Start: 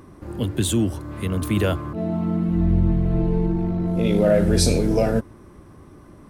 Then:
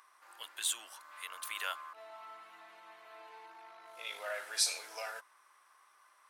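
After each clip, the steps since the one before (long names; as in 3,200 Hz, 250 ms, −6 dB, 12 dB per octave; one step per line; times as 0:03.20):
high-pass filter 1,000 Hz 24 dB per octave
level −6.5 dB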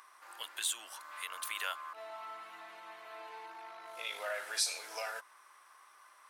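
downward compressor 1.5 to 1, threshold −46 dBFS, peak gain reduction 7.5 dB
level +5 dB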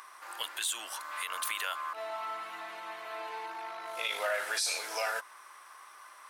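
brickwall limiter −29.5 dBFS, peak gain reduction 10 dB
level +8 dB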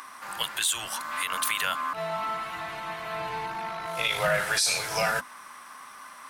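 sub-octave generator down 2 octaves, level +3 dB
level +7 dB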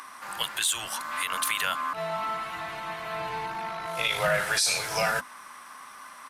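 downsampling to 32,000 Hz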